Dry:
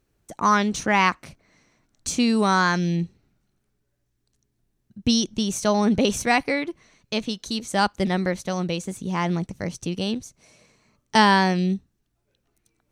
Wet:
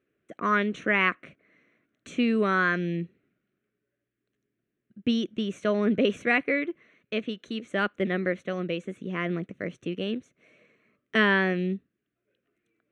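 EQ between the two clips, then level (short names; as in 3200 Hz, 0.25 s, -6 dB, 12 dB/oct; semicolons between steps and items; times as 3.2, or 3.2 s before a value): BPF 430–4000 Hz; tilt -2.5 dB/oct; fixed phaser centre 2100 Hz, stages 4; +2.5 dB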